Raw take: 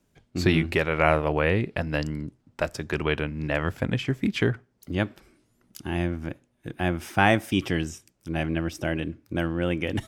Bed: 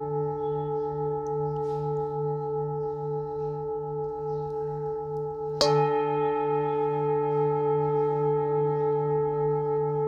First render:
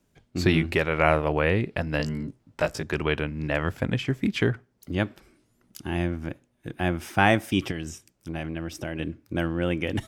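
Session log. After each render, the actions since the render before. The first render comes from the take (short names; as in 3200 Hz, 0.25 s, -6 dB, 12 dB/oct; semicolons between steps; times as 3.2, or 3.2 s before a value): 1.98–2.83 doubler 18 ms -2.5 dB; 7.71–9 compressor, threshold -27 dBFS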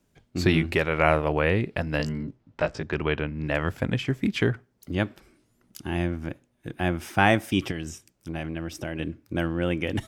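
2.12–3.47 air absorption 120 m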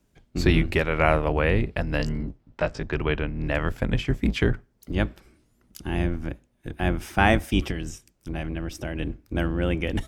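octaver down 2 oct, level 0 dB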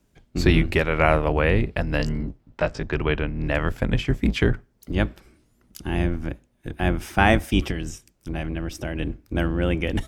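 gain +2 dB; limiter -3 dBFS, peak gain reduction 1 dB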